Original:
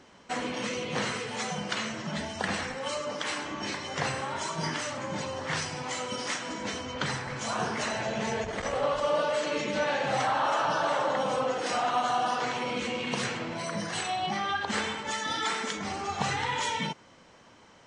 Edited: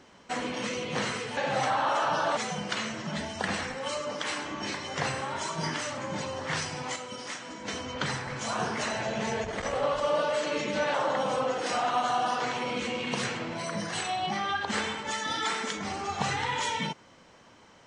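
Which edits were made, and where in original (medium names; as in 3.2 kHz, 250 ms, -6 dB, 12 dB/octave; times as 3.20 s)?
5.96–6.68 s: gain -5.5 dB
9.94–10.94 s: move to 1.37 s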